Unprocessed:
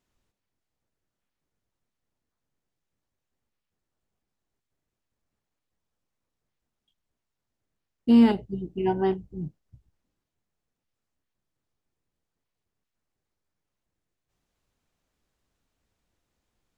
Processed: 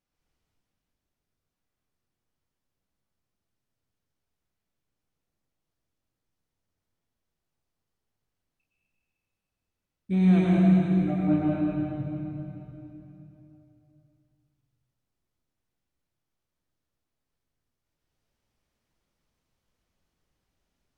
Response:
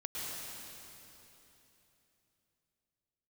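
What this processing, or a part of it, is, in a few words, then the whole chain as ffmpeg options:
slowed and reverbed: -filter_complex "[0:a]asetrate=35280,aresample=44100[a];[1:a]atrim=start_sample=2205[b];[a][b]afir=irnorm=-1:irlink=0,volume=-3dB"

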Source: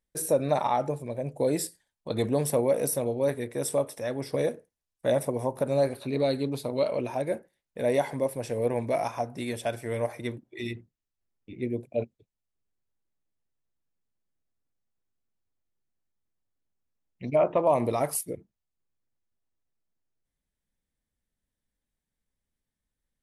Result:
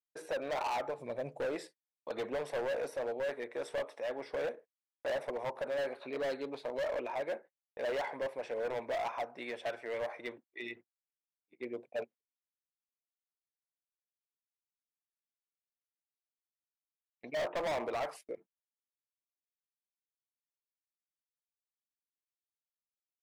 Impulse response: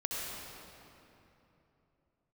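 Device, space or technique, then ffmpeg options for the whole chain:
walkie-talkie: -filter_complex "[0:a]asettb=1/sr,asplit=3[a][b][c];[a]atrim=end=0.984[d];[b]atrim=start=0.98:end=1.45,asetpts=PTS-STARTPTS,afade=t=in:d=0.004:c=qsin,afade=t=out:st=0.466:d=0.004:c=qsin,bass=f=250:g=13,treble=f=4k:g=10[e];[c]atrim=start=1.446[f];[d][e]acrossfade=d=0.004:c1=hsin:c2=qsin[g];[g][f]acrossfade=d=0.004:c1=qsin:c2=hsin,highpass=590,lowpass=2.4k,asoftclip=type=hard:threshold=-32dB,agate=range=-36dB:threshold=-52dB:ratio=16:detection=peak"

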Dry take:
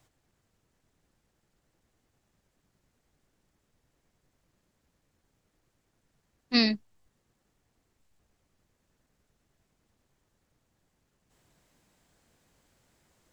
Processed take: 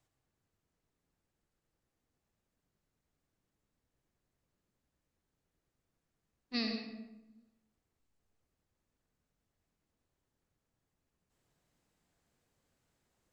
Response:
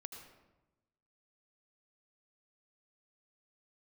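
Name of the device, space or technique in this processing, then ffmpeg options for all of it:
bathroom: -filter_complex "[1:a]atrim=start_sample=2205[a];[0:a][a]afir=irnorm=-1:irlink=0,volume=-6.5dB"

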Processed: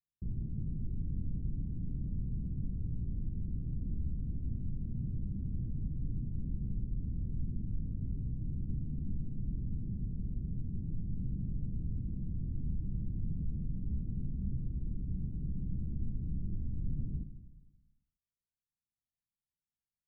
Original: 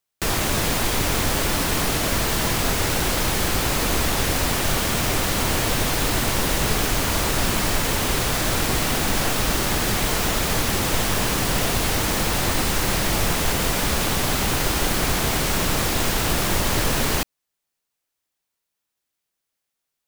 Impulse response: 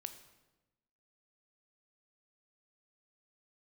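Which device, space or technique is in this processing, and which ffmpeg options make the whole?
club heard from the street: -filter_complex "[0:a]alimiter=limit=-16.5dB:level=0:latency=1:release=106,lowpass=f=200:w=0.5412,lowpass=f=200:w=1.3066[a];[1:a]atrim=start_sample=2205[b];[a][b]afir=irnorm=-1:irlink=0,volume=-1dB"

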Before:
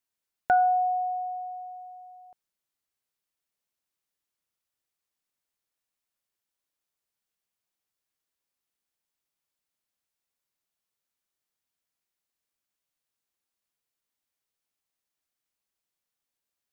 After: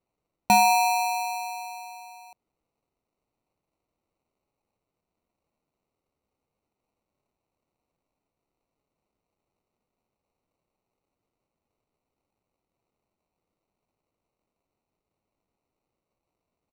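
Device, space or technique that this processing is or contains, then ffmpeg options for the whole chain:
crushed at another speed: -af "asetrate=35280,aresample=44100,acrusher=samples=33:mix=1:aa=0.000001,asetrate=55125,aresample=44100,volume=3dB"

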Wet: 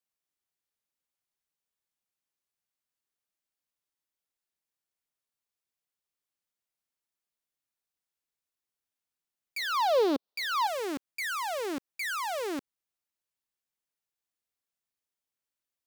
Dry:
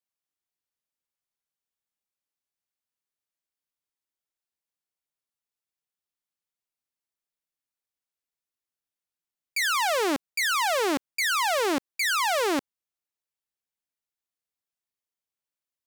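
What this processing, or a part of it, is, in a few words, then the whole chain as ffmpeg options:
clipper into limiter: -filter_complex "[0:a]asoftclip=type=hard:threshold=-25.5dB,alimiter=level_in=7dB:limit=-24dB:level=0:latency=1:release=115,volume=-7dB,asettb=1/sr,asplit=3[a][b][c];[a]atrim=end=9.584[d];[b]atrim=start=9.58:end=10.67,asetpts=PTS-STARTPTS,afade=t=in:d=0.004:c=qsin,afade=t=out:st=1.086:d=0.004:c=qsin,equalizer=f=125:t=o:w=1:g=-7,equalizer=f=250:t=o:w=1:g=5,equalizer=f=500:t=o:w=1:g=10,equalizer=f=1k:t=o:w=1:g=6,equalizer=f=2k:t=o:w=1:g=-6,equalizer=f=4k:t=o:w=1:g=11,equalizer=f=8k:t=o:w=1:g=-9[e];[c]atrim=start=10.666[f];[d][e]acrossfade=d=0.004:c1=hsin:c2=qsin[g];[g][f]acrossfade=d=0.004:c1=qsin:c2=hsin"

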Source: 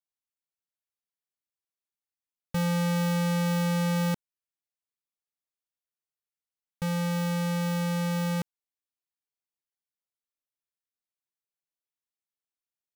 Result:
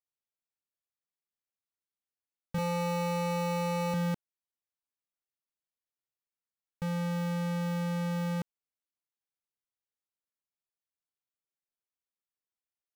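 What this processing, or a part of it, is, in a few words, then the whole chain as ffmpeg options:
behind a face mask: -filter_complex "[0:a]asettb=1/sr,asplit=3[a][b][c];[a]atrim=end=2.584[d];[b]atrim=start=2.58:end=3.94,asetpts=PTS-STARTPTS,afade=t=in:d=0.004:c=qsin,afade=t=out:st=1.356:d=0.004:c=qsin,aecho=1:1:2.3:0.95,atrim=end_sample=59976[e];[c]atrim=start=3.936[f];[d][e]acrossfade=d=0.004:c1=hsin:c2=qsin[g];[g][f]acrossfade=d=0.004:c1=qsin:c2=hsin,highshelf=f=3k:g=-7,volume=-3.5dB"

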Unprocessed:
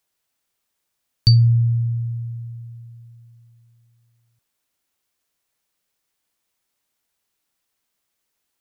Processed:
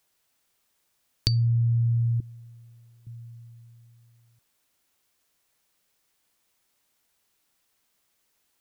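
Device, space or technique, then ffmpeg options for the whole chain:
serial compression, peaks first: -filter_complex "[0:a]asettb=1/sr,asplit=3[a][b][c];[a]atrim=end=2.204[d];[b]atrim=start=2.2:end=3.07,asetpts=PTS-STARTPTS,afade=t=in:d=0.004:c=qsin,afade=t=out:st=0.866:d=0.004:c=qsin,lowshelf=f=240:t=q:w=3:g=-13.5[e];[c]atrim=start=3.066[f];[d][e]acrossfade=d=0.004:c1=hsin:c2=qsin[g];[g][f]acrossfade=d=0.004:c1=qsin:c2=hsin,acompressor=threshold=-21dB:ratio=6,acompressor=threshold=-27dB:ratio=2,volume=4dB"

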